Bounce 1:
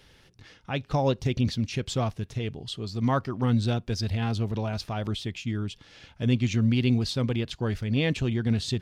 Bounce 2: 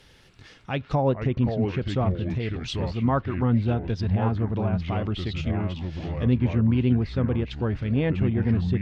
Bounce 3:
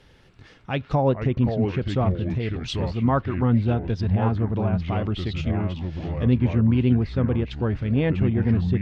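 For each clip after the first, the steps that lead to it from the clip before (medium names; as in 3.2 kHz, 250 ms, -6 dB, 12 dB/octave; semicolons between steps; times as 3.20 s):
ever faster or slower copies 280 ms, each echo -4 st, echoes 2, each echo -6 dB; low-pass that closes with the level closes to 1.6 kHz, closed at -22.5 dBFS; trim +2 dB
tape noise reduction on one side only decoder only; trim +2 dB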